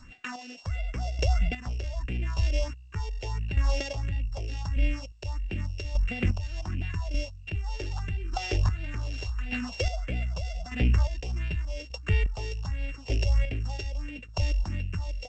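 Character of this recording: a buzz of ramps at a fixed pitch in blocks of 16 samples; phasing stages 4, 1.5 Hz, lowest notch 170–1100 Hz; chopped level 0.84 Hz, depth 60%, duty 30%; G.722

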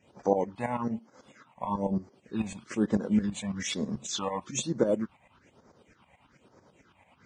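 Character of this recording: tremolo saw up 9.1 Hz, depth 80%; phasing stages 6, 1.1 Hz, lowest notch 360–2800 Hz; Vorbis

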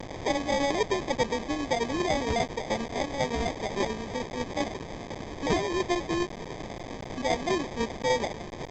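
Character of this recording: a quantiser's noise floor 6-bit, dither triangular; tremolo saw down 10 Hz, depth 45%; aliases and images of a low sample rate 1400 Hz, jitter 0%; A-law

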